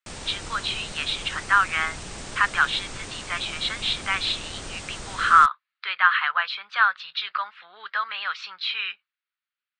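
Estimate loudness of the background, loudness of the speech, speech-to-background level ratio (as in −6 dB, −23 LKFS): −37.0 LKFS, −23.5 LKFS, 13.5 dB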